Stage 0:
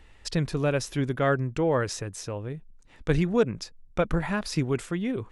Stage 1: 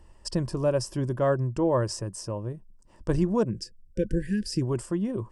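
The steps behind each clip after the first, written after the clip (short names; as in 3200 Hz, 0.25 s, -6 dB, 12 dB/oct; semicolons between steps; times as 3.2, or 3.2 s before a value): ripple EQ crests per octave 1.3, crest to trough 8 dB; spectral delete 3.5–4.62, 520–1500 Hz; band shelf 2500 Hz -12 dB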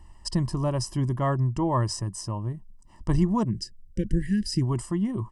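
comb 1 ms, depth 72%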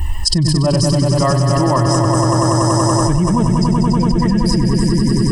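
per-bin expansion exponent 1.5; on a send: swelling echo 95 ms, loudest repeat 5, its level -5.5 dB; on the sum: fast leveller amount 100%; gain +5 dB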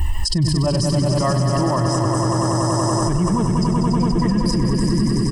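limiter -11 dBFS, peak gain reduction 9.5 dB; frequency-shifting echo 0.424 s, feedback 53%, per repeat +43 Hz, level -13.5 dB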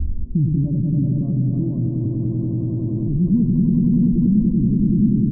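added noise pink -36 dBFS; ladder low-pass 280 Hz, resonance 50%; gain +6.5 dB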